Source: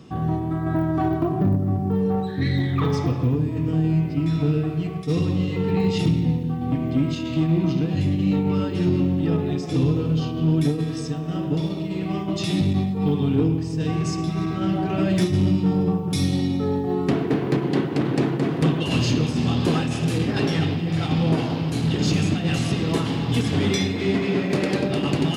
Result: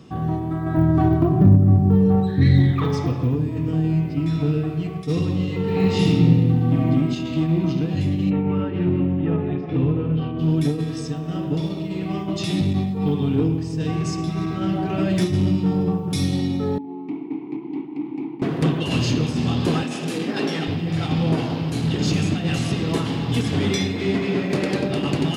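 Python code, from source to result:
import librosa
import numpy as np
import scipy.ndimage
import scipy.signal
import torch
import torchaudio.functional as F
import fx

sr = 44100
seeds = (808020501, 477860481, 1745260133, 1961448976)

y = fx.low_shelf(x, sr, hz=210.0, db=11.5, at=(0.77, 2.72))
y = fx.reverb_throw(y, sr, start_s=5.62, length_s=1.25, rt60_s=1.5, drr_db=-2.5)
y = fx.lowpass(y, sr, hz=2700.0, slope=24, at=(8.29, 10.38), fade=0.02)
y = fx.vowel_filter(y, sr, vowel='u', at=(16.78, 18.42))
y = fx.highpass(y, sr, hz=190.0, slope=24, at=(19.83, 20.68))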